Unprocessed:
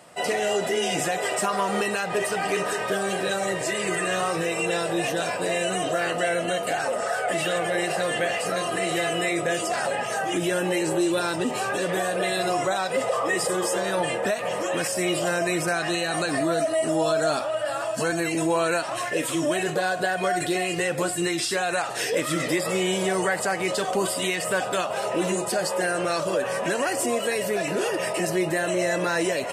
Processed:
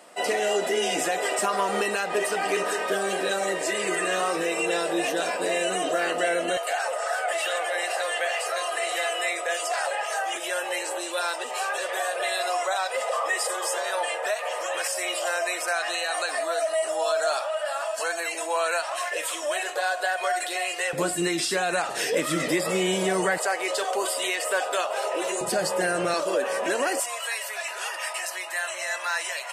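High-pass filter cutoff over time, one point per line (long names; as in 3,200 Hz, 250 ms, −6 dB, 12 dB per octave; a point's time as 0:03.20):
high-pass filter 24 dB per octave
230 Hz
from 0:06.57 570 Hz
from 0:20.93 150 Hz
from 0:23.38 420 Hz
from 0:25.41 110 Hz
from 0:26.14 260 Hz
from 0:27.00 850 Hz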